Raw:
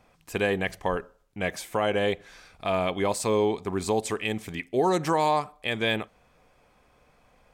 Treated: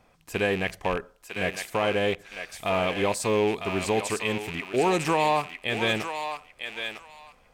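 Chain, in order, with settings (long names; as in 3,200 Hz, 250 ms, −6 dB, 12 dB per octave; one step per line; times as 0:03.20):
loose part that buzzes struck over −39 dBFS, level −23 dBFS
feedback echo with a high-pass in the loop 953 ms, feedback 22%, high-pass 990 Hz, level −5 dB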